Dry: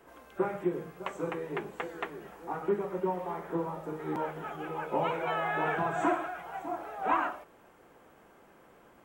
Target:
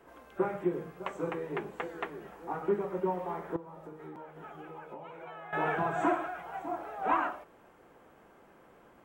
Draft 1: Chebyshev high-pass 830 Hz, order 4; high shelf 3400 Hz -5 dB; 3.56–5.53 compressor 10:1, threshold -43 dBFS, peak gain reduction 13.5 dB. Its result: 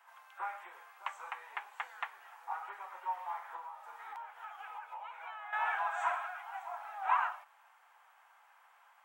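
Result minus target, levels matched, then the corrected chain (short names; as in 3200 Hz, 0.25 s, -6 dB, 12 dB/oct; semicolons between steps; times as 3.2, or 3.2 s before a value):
1000 Hz band +3.5 dB
high shelf 3400 Hz -5 dB; 3.56–5.53 compressor 10:1, threshold -43 dBFS, peak gain reduction 17.5 dB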